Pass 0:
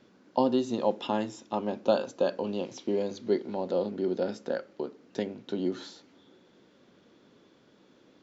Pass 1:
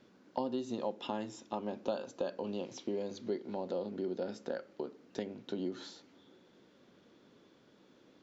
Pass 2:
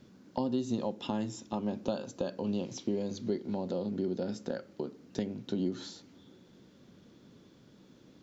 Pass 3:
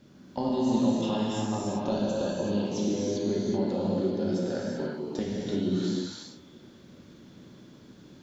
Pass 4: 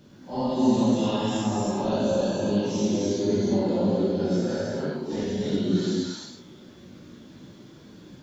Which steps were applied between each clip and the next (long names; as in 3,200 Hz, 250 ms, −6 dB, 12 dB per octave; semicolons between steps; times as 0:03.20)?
downward compressor 2.5 to 1, threshold −32 dBFS, peak gain reduction 9.5 dB; level −3 dB
bass and treble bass +13 dB, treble +7 dB
convolution reverb, pre-delay 3 ms, DRR −6 dB
random phases in long frames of 200 ms; level +4 dB